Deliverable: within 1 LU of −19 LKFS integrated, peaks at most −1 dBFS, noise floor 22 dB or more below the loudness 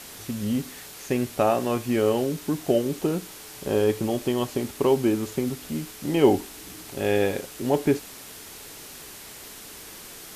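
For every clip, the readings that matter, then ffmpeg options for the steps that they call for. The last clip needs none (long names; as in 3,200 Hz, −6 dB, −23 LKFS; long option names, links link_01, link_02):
background noise floor −43 dBFS; target noise floor −48 dBFS; integrated loudness −25.5 LKFS; sample peak −5.5 dBFS; target loudness −19.0 LKFS
→ -af "afftdn=noise_reduction=6:noise_floor=-43"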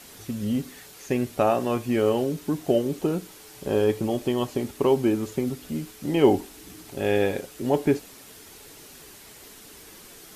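background noise floor −47 dBFS; target noise floor −48 dBFS
→ -af "afftdn=noise_reduction=6:noise_floor=-47"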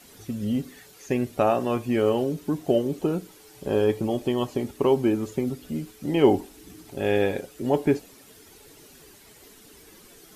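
background noise floor −51 dBFS; integrated loudness −25.5 LKFS; sample peak −5.5 dBFS; target loudness −19.0 LKFS
→ -af "volume=6.5dB,alimiter=limit=-1dB:level=0:latency=1"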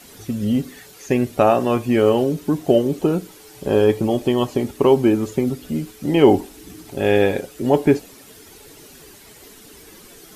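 integrated loudness −19.0 LKFS; sample peak −1.0 dBFS; background noise floor −45 dBFS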